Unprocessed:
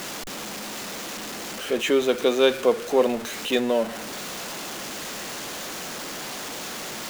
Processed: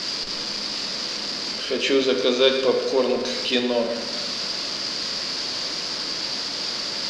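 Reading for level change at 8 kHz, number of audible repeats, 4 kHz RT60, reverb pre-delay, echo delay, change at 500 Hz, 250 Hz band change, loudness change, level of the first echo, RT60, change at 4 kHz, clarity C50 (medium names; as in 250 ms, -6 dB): -0.5 dB, no echo, 0.80 s, 15 ms, no echo, +0.5 dB, +1.0 dB, +3.0 dB, no echo, 1.4 s, +9.0 dB, 6.5 dB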